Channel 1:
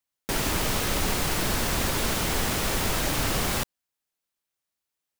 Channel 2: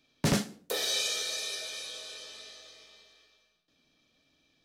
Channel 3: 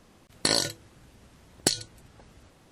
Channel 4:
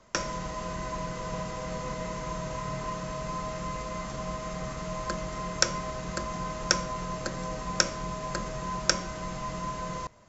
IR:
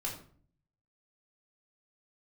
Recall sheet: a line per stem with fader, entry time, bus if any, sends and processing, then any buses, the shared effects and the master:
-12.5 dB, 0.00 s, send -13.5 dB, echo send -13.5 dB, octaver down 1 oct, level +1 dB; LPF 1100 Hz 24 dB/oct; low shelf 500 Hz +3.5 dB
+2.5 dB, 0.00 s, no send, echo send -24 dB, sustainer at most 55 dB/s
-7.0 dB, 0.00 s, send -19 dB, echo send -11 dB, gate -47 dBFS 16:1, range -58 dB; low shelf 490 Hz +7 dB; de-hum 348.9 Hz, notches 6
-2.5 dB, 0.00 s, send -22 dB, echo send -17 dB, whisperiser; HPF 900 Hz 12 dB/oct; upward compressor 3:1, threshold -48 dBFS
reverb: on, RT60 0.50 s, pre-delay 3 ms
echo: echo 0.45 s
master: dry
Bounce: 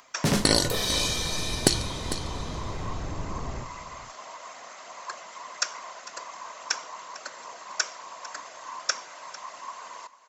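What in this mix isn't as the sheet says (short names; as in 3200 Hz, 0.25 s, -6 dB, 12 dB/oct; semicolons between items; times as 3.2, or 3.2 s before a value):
stem 2: missing sustainer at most 55 dB/s; stem 3 -7.0 dB -> +0.5 dB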